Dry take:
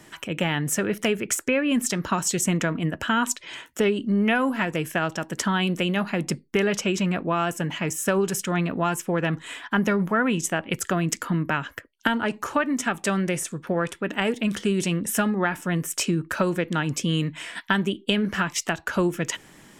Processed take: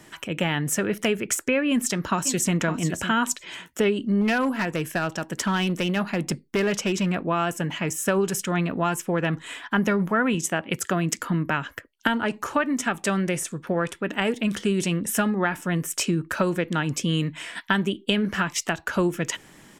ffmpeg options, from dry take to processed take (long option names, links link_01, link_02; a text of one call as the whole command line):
ffmpeg -i in.wav -filter_complex "[0:a]asplit=2[link_01][link_02];[link_02]afade=type=in:start_time=1.69:duration=0.01,afade=type=out:start_time=2.55:duration=0.01,aecho=0:1:560|1120:0.298538|0.0298538[link_03];[link_01][link_03]amix=inputs=2:normalize=0,asettb=1/sr,asplit=3[link_04][link_05][link_06];[link_04]atrim=end=4.214[link_07];[link_05]atrim=start=4.21:end=7.16,asetpts=PTS-STARTPTS,afade=type=in:duration=0.004:curve=qsin,afade=type=out:start_time=2.946:duration=0.004:curve=qsin,asoftclip=type=hard:threshold=-18dB[link_08];[link_06]atrim=start=7.156[link_09];[link_07][link_08]acrossfade=duration=0.004:curve1=hsin:curve2=qsin[link_10];[link_10][link_09]acrossfade=duration=0.004:curve1=qsin:curve2=hsin,asettb=1/sr,asplit=3[link_11][link_12][link_13];[link_11]atrim=end=10.344[link_14];[link_12]atrim=start=10.34:end=11.19,asetpts=PTS-STARTPTS,afade=type=in:duration=0.004:curve=qsin,afade=type=out:start_time=0.846:duration=0.004:curve=qsin,highpass=88[link_15];[link_13]atrim=start=11.186[link_16];[link_14][link_15]acrossfade=duration=0.004:curve1=hsin:curve2=qsin[link_17];[link_17][link_16]acrossfade=duration=0.004:curve1=qsin:curve2=hsin" out.wav